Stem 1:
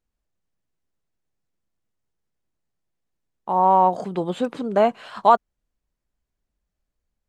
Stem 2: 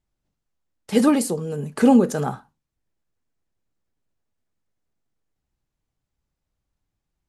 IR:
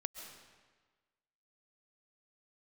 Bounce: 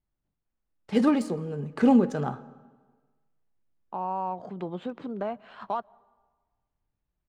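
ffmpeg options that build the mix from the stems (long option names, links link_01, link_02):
-filter_complex "[0:a]acrossover=split=130[link_01][link_02];[link_02]acompressor=threshold=-25dB:ratio=2.5[link_03];[link_01][link_03]amix=inputs=2:normalize=0,adelay=450,volume=-6.5dB,asplit=2[link_04][link_05];[link_05]volume=-19dB[link_06];[1:a]volume=-6dB,asplit=2[link_07][link_08];[link_08]volume=-10.5dB[link_09];[2:a]atrim=start_sample=2205[link_10];[link_06][link_09]amix=inputs=2:normalize=0[link_11];[link_11][link_10]afir=irnorm=-1:irlink=0[link_12];[link_04][link_07][link_12]amix=inputs=3:normalize=0,equalizer=frequency=490:width_type=o:width=0.77:gain=-2,adynamicsmooth=sensitivity=2.5:basefreq=3100"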